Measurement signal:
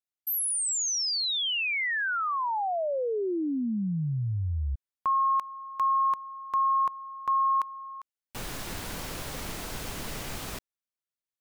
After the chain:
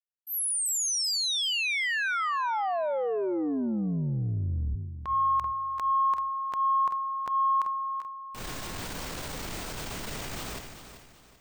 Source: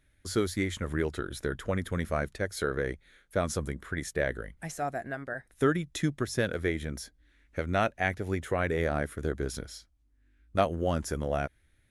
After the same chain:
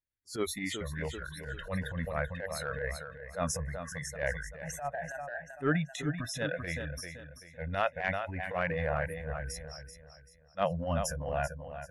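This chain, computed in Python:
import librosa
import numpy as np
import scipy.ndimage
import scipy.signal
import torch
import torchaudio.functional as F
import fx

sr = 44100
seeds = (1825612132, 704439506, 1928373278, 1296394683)

y = fx.noise_reduce_blind(x, sr, reduce_db=29)
y = fx.echo_feedback(y, sr, ms=386, feedback_pct=36, wet_db=-11.0)
y = fx.transient(y, sr, attack_db=-12, sustain_db=5)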